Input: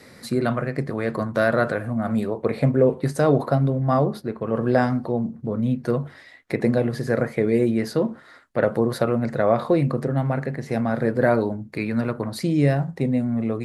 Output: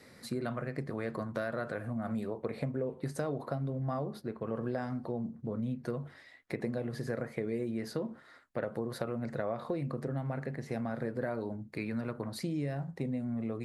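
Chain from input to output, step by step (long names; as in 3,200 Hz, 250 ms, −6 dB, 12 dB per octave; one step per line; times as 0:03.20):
downward compressor, threshold −22 dBFS, peak gain reduction 10 dB
level −9 dB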